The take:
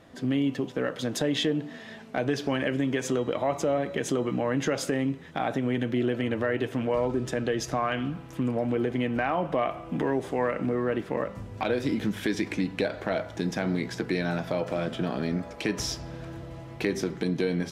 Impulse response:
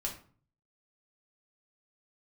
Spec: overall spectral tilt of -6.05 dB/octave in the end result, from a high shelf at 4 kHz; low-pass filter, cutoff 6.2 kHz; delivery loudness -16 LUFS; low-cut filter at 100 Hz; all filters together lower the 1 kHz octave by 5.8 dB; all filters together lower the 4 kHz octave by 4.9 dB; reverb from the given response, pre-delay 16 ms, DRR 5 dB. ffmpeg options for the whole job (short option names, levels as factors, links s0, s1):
-filter_complex "[0:a]highpass=100,lowpass=6200,equalizer=f=1000:t=o:g=-8.5,highshelf=f=4000:g=5,equalizer=f=4000:t=o:g=-8.5,asplit=2[s0][s1];[1:a]atrim=start_sample=2205,adelay=16[s2];[s1][s2]afir=irnorm=-1:irlink=0,volume=0.473[s3];[s0][s3]amix=inputs=2:normalize=0,volume=4.47"